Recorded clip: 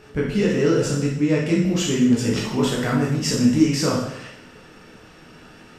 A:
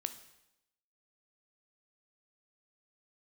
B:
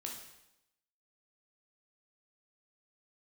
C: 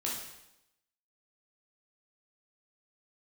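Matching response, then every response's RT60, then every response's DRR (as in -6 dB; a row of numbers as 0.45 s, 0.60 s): C; 0.90 s, 0.90 s, 0.90 s; 9.0 dB, -0.5 dB, -4.5 dB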